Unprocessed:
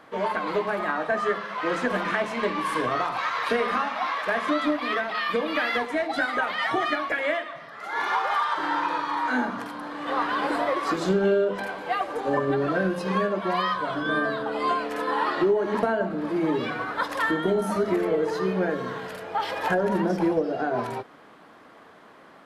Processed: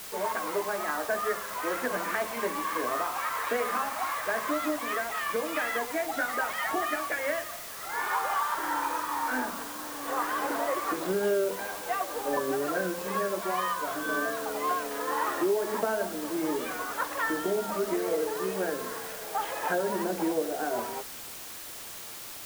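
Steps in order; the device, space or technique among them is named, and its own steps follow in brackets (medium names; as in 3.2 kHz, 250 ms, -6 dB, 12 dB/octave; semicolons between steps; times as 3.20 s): wax cylinder (band-pass 280–2600 Hz; wow and flutter; white noise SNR 11 dB); trim -4 dB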